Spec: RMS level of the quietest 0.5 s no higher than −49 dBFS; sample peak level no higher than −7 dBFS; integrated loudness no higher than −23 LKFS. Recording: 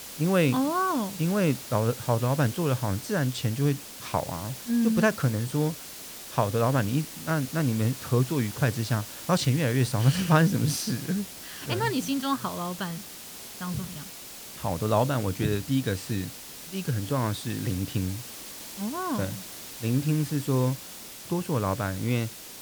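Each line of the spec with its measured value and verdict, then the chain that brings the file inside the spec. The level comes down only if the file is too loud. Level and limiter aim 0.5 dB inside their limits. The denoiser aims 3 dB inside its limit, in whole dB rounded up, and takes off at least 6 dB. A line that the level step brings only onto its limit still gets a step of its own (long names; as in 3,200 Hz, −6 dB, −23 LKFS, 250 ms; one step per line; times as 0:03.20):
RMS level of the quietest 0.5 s −43 dBFS: out of spec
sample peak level −8.0 dBFS: in spec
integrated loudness −27.5 LKFS: in spec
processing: broadband denoise 9 dB, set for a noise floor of −43 dBFS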